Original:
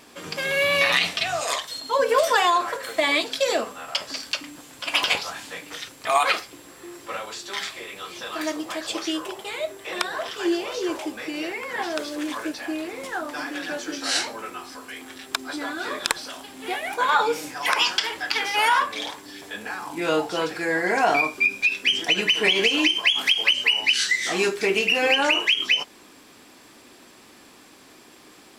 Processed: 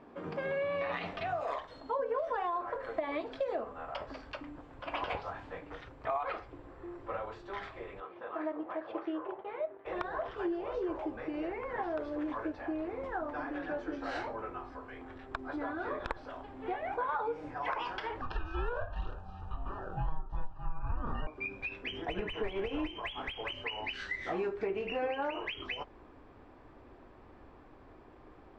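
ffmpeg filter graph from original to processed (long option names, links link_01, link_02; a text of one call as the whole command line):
ffmpeg -i in.wav -filter_complex "[0:a]asettb=1/sr,asplit=3[link_01][link_02][link_03];[link_01]atrim=end=8.004[link_04];[link_02]atrim=start=8:end=9.86,asetpts=PTS-STARTPTS,afade=type=in:duration=0.004:curve=qsin,afade=type=out:start_time=1.856:duration=0.004:curve=qsin,aeval=exprs='sgn(val(0))*max(abs(val(0))-0.00398,0)':channel_layout=same,highpass=250,lowpass=2500[link_05];[link_03]atrim=start=9.856[link_06];[link_04][link_05]acrossfade=duration=0.004:curve1=hsin:curve2=qsin[link_07];[link_07][link_06]acrossfade=duration=0.004:curve1=qsin:curve2=hsin,asettb=1/sr,asplit=3[link_08][link_09][link_10];[link_08]atrim=end=18.214[link_11];[link_09]atrim=start=18.21:end=21.27,asetpts=PTS-STARTPTS,afade=type=in:duration=0.004:curve=qsin,afade=type=out:start_time=3.056:duration=0.004:curve=qsin,aeval=exprs='val(0)*sin(2*PI*480*n/s)':channel_layout=same,asuperstop=centerf=2100:order=20:qfactor=3.9[link_12];[link_10]atrim=start=21.266[link_13];[link_11][link_12]acrossfade=duration=0.004:curve1=hsin:curve2=qsin[link_14];[link_14][link_13]acrossfade=duration=0.004:curve1=qsin:curve2=hsin,asettb=1/sr,asplit=3[link_15][link_16][link_17];[link_15]atrim=end=21.914[link_18];[link_16]atrim=start=21.91:end=23.5,asetpts=PTS-STARTPTS,afade=type=in:duration=0.004:curve=qsin,afade=type=out:start_time=1.586:duration=0.004:curve=qsin,bandreject=frequency=4400:width=5.4,acrossover=split=5200[link_19][link_20];[link_20]acompressor=threshold=-44dB:ratio=4:attack=1:release=60[link_21];[link_19][link_21]amix=inputs=2:normalize=0,volume=17.5dB,asoftclip=hard,volume=-17.5dB[link_22];[link_17]atrim=start=23.496[link_23];[link_18][link_22]acrossfade=duration=0.004:curve1=hsin:curve2=qsin[link_24];[link_24][link_23]acrossfade=duration=0.004:curve1=qsin:curve2=hsin,lowpass=1000,asubboost=boost=10.5:cutoff=62,acompressor=threshold=-30dB:ratio=5,volume=-1.5dB" out.wav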